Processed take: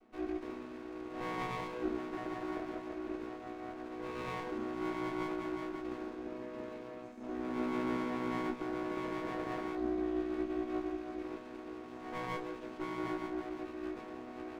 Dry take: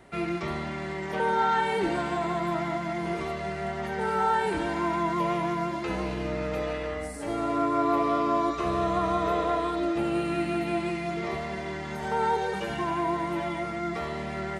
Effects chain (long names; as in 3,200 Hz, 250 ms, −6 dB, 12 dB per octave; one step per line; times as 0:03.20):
channel vocoder with a chord as carrier major triad, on B3
tuned comb filter 220 Hz, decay 0.39 s, harmonics all, mix 90%
windowed peak hold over 17 samples
level +7.5 dB